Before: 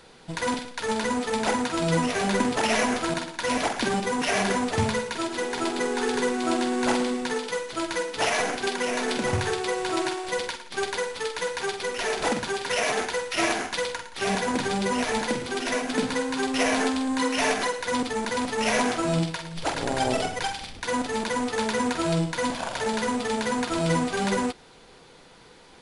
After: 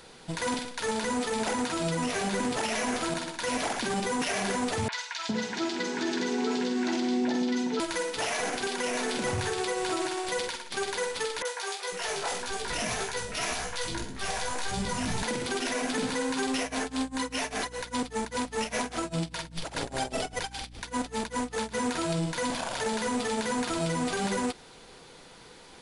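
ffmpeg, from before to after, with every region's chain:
ffmpeg -i in.wav -filter_complex "[0:a]asettb=1/sr,asplit=3[link_01][link_02][link_03];[link_01]atrim=end=4.884[link_04];[link_02]atrim=start=4.88:end=7.8,asetpts=PTS-STARTPTS,afade=type=in:duration=0.004:curve=qsin,afade=type=out:start_time=2.916:duration=0.004:curve=qsin,highpass=180,equalizer=frequency=190:width_type=q:width=4:gain=9,equalizer=frequency=280:width_type=q:width=4:gain=5,equalizer=frequency=520:width_type=q:width=4:gain=-7,equalizer=frequency=1200:width_type=q:width=4:gain=-6,lowpass=frequency=6100:width=0.5412,lowpass=frequency=6100:width=1.3066,acrossover=split=860|2600[link_05][link_06][link_07];[link_07]adelay=40[link_08];[link_05]adelay=410[link_09];[link_09][link_06][link_08]amix=inputs=3:normalize=0,atrim=end_sample=128772[link_10];[link_03]atrim=start=7.796[link_11];[link_04][link_10]acrossfade=duration=0.004:curve1=hsin:curve2=qsin[link_12];[link_12][link_11]acrossfade=duration=0.004:curve1=qsin:curve2=hsin,asettb=1/sr,asplit=3[link_13][link_14][link_15];[link_13]atrim=end=11.424[link_16];[link_14]atrim=start=11.42:end=15.23,asetpts=PTS-STARTPTS,afade=type=in:duration=0.004:curve=qsin,afade=type=out:start_time=3.806:duration=0.004:curve=qsin,asubboost=boost=7.5:cutoff=140,flanger=delay=15.5:depth=4.2:speed=1.8,acrossover=split=410|2200[link_17][link_18][link_19];[link_19]adelay=30[link_20];[link_17]adelay=500[link_21];[link_21][link_18][link_20]amix=inputs=3:normalize=0,atrim=end_sample=168021[link_22];[link_15]atrim=start=15.226[link_23];[link_16][link_22]acrossfade=duration=0.004:curve1=hsin:curve2=qsin[link_24];[link_24][link_23]acrossfade=duration=0.004:curve1=qsin:curve2=hsin,asettb=1/sr,asplit=3[link_25][link_26][link_27];[link_25]atrim=end=16.604[link_28];[link_26]atrim=start=16.6:end=21.78,asetpts=PTS-STARTPTS,afade=type=in:duration=0.004:curve=qsin,afade=type=out:start_time=5.176:duration=0.004:curve=qsin,tremolo=f=5:d=0.97,aeval=exprs='val(0)+0.00398*(sin(2*PI*60*n/s)+sin(2*PI*2*60*n/s)/2+sin(2*PI*3*60*n/s)/3+sin(2*PI*4*60*n/s)/4+sin(2*PI*5*60*n/s)/5)':channel_layout=same[link_29];[link_27]atrim=start=21.776[link_30];[link_28][link_29]acrossfade=duration=0.004:curve1=hsin:curve2=qsin[link_31];[link_31][link_30]acrossfade=duration=0.004:curve1=qsin:curve2=hsin,highshelf=frequency=5400:gain=5.5,alimiter=limit=-20.5dB:level=0:latency=1:release=62" out.wav

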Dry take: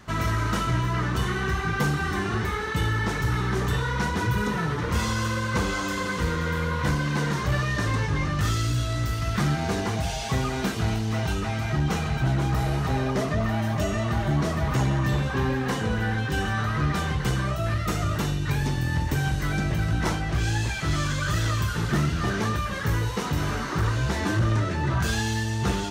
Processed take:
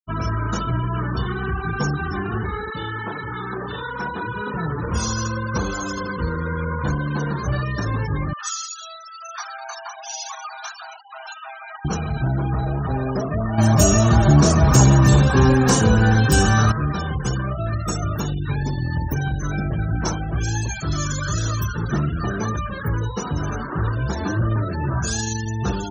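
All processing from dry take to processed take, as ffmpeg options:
ffmpeg -i in.wav -filter_complex "[0:a]asettb=1/sr,asplit=3[link_01][link_02][link_03];[link_01]atrim=end=2.704[link_04];[link_02]atrim=start=2.7:end=4.54,asetpts=PTS-STARTPTS,afade=type=in:duration=0.004:curve=qsin,afade=type=out:start_time=1.836:duration=0.004:curve=qsin,acrossover=split=6400[link_05][link_06];[link_06]acompressor=threshold=-57dB:ratio=4:attack=1:release=60[link_07];[link_05][link_07]amix=inputs=2:normalize=0,highpass=frequency=380:poles=1,asplit=2[link_08][link_09];[link_09]adelay=27,volume=-10dB[link_10];[link_08][link_10]amix=inputs=2:normalize=0,atrim=end_sample=81144[link_11];[link_03]atrim=start=4.536[link_12];[link_04][link_11]acrossfade=duration=0.004:curve1=hsin:curve2=qsin[link_13];[link_13][link_12]acrossfade=duration=0.004:curve1=qsin:curve2=hsin,asettb=1/sr,asplit=3[link_14][link_15][link_16];[link_14]atrim=end=8.334[link_17];[link_15]atrim=start=8.33:end=11.85,asetpts=PTS-STARTPTS,afade=type=in:duration=0.004:curve=qsin,afade=type=out:start_time=3.516:duration=0.004:curve=qsin,highpass=frequency=810:width=0.5412,highpass=frequency=810:width=1.3066,aecho=1:1:188:0.178,atrim=end_sample=155232[link_18];[link_16]atrim=start=11.846[link_19];[link_17][link_18]acrossfade=duration=0.004:curve1=hsin:curve2=qsin[link_20];[link_20][link_19]acrossfade=duration=0.004:curve1=qsin:curve2=hsin,asettb=1/sr,asplit=3[link_21][link_22][link_23];[link_21]atrim=end=13.584[link_24];[link_22]atrim=start=13.58:end=16.72,asetpts=PTS-STARTPTS,afade=type=in:duration=0.004:curve=qsin,afade=type=out:start_time=3.136:duration=0.004:curve=qsin,lowshelf=frequency=420:gain=2.5,acrusher=bits=7:dc=4:mix=0:aa=0.000001,acontrast=87[link_25];[link_23]atrim=start=16.716[link_26];[link_24][link_25]acrossfade=duration=0.004:curve1=hsin:curve2=qsin[link_27];[link_27][link_26]acrossfade=duration=0.004:curve1=qsin:curve2=hsin,asettb=1/sr,asplit=3[link_28][link_29][link_30];[link_28]atrim=end=25.004[link_31];[link_29]atrim=start=25:end=25.46,asetpts=PTS-STARTPTS,afade=type=in:duration=0.004:curve=qsin,afade=type=out:start_time=0.456:duration=0.004:curve=qsin,highpass=47,tremolo=f=25:d=0.261[link_32];[link_30]atrim=start=25.456[link_33];[link_31][link_32]acrossfade=duration=0.004:curve1=hsin:curve2=qsin[link_34];[link_34][link_33]acrossfade=duration=0.004:curve1=qsin:curve2=hsin,afftfilt=real='re*gte(hypot(re,im),0.0316)':imag='im*gte(hypot(re,im),0.0316)':win_size=1024:overlap=0.75,highshelf=frequency=4600:width_type=q:width=1.5:gain=12,bandreject=frequency=2000:width=5.4,volume=2dB" out.wav

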